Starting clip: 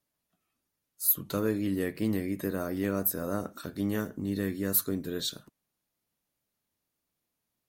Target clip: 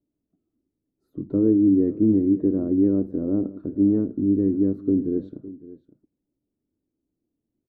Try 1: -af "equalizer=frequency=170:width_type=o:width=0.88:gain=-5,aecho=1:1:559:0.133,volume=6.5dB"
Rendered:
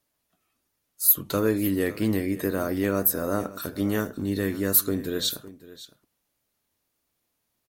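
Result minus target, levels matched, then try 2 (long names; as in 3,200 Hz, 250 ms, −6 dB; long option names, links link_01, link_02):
250 Hz band −5.0 dB
-af "lowpass=frequency=310:width_type=q:width=3,equalizer=frequency=170:width_type=o:width=0.88:gain=-5,aecho=1:1:559:0.133,volume=6.5dB"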